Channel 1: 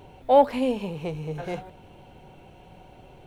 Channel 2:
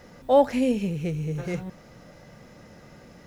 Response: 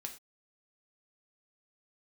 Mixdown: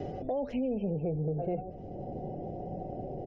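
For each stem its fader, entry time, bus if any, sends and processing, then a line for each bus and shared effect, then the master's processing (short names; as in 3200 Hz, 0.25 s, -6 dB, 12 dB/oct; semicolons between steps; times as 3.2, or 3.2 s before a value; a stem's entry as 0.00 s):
+1.0 dB, 0.00 s, no send, steep low-pass 750 Hz 72 dB/oct; three-band squash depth 70%
-6.5 dB, 1 ms, no send, spectral gate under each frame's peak -30 dB strong; auto duck -16 dB, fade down 0.75 s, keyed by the first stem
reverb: off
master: bell 3000 Hz +13 dB 0.53 oct; limiter -24.5 dBFS, peak gain reduction 10.5 dB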